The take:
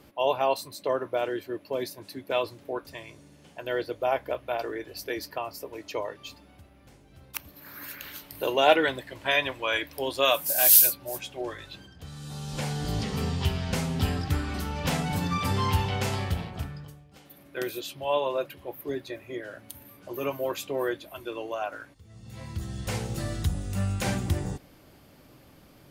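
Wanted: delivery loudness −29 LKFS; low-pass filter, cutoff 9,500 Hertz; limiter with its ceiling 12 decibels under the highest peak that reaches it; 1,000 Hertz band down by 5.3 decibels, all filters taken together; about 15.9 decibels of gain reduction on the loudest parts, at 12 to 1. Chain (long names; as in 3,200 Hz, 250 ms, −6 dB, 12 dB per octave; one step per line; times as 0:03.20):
low-pass filter 9,500 Hz
parametric band 1,000 Hz −7.5 dB
downward compressor 12 to 1, threshold −35 dBFS
level +13 dB
brickwall limiter −17.5 dBFS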